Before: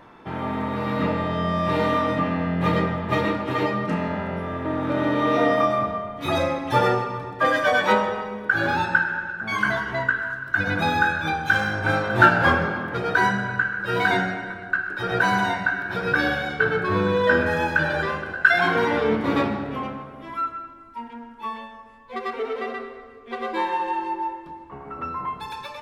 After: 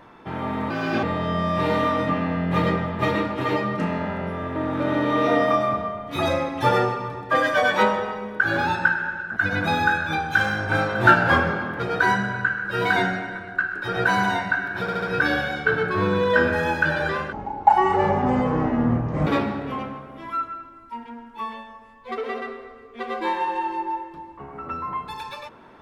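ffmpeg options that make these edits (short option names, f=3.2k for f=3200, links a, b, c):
-filter_complex "[0:a]asplit=10[a][b][c][d][e][f][g][h][i][j];[a]atrim=end=0.704[k];[b]atrim=start=0.7:end=1.13,asetpts=PTS-STARTPTS,asetrate=56889,aresample=44100[l];[c]atrim=start=1.126:end=9.462[m];[d]atrim=start=10.508:end=16.032[n];[e]atrim=start=15.958:end=16.032[o];[f]atrim=start=15.958:end=16.032[p];[g]atrim=start=15.958:end=18.264[q];[h]atrim=start=18.26:end=19.31,asetpts=PTS-STARTPTS,asetrate=23814,aresample=44100[r];[i]atrim=start=19.306:end=22.222[s];[j]atrim=start=22.498[t];[k][l]acrossfade=d=0.004:c1=hsin:c2=hsin[u];[u][m]acrossfade=d=0.004:c1=hsin:c2=hsin[v];[v][n]acrossfade=d=0.004:c1=hsin:c2=hsin[w];[w][o]acrossfade=d=0.004:c1=hsin:c2=hsin[x];[x][p]acrossfade=d=0.004:c1=hsin:c2=hsin[y];[y][q]acrossfade=d=0.004:c1=hsin:c2=hsin[z];[z][r]acrossfade=d=0.004:c1=hsin:c2=hsin[aa];[aa][s]acrossfade=d=0.004:c1=hsin:c2=hsin[ab];[ab][t]acrossfade=d=0.004:c1=hsin:c2=hsin"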